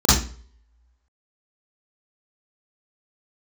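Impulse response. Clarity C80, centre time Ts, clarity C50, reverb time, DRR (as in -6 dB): 8.0 dB, 53 ms, 0.5 dB, 0.45 s, -9.0 dB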